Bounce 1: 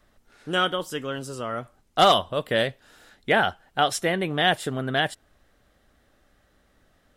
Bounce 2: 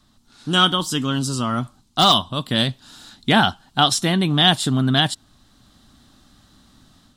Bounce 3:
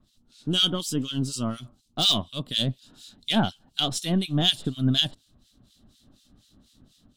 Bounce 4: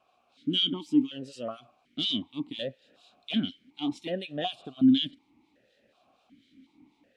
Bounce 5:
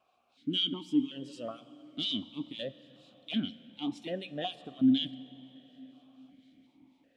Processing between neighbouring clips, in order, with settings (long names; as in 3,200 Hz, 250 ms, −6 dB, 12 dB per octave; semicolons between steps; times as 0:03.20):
de-essing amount 50%; octave-band graphic EQ 125/250/500/1,000/2,000/4,000/8,000 Hz +7/+10/−12/+7/−8/+12/+6 dB; automatic gain control gain up to 6.5 dB
gain on one half-wave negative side −3 dB; flat-topped bell 1,300 Hz −9 dB; two-band tremolo in antiphase 4.1 Hz, depth 100%, crossover 1,800 Hz
brickwall limiter −14.5 dBFS, peak gain reduction 8.5 dB; background noise pink −63 dBFS; formant filter that steps through the vowels 2.7 Hz; level +8.5 dB
dense smooth reverb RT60 4.9 s, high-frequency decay 0.65×, DRR 16 dB; level −4 dB